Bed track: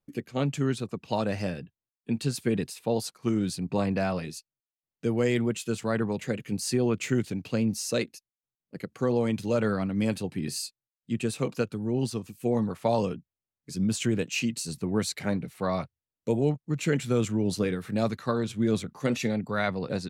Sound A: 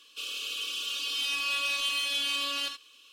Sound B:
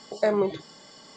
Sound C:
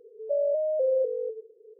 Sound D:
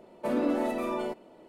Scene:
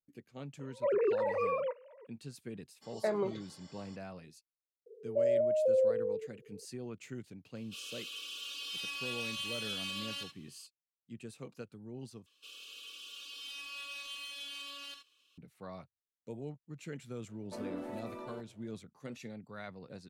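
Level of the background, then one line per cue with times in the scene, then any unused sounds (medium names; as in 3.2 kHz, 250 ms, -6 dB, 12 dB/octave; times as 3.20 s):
bed track -18 dB
0.59 s: add D -2 dB + formants replaced by sine waves
2.81 s: add B -9.5 dB, fades 0.02 s
4.86 s: add C -3 dB
7.55 s: add A -9.5 dB
12.26 s: replace with A -14.5 dB
17.28 s: add D -14 dB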